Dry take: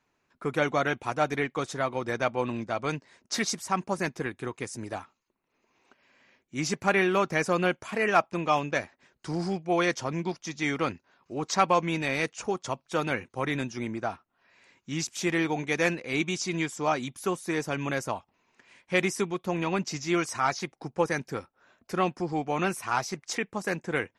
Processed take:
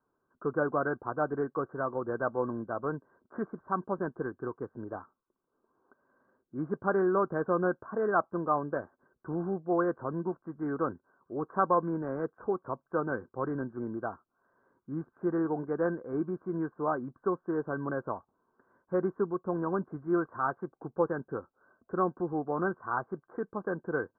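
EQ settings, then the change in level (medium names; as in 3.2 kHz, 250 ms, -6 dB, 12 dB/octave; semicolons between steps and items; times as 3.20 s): rippled Chebyshev low-pass 1.6 kHz, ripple 6 dB; 0.0 dB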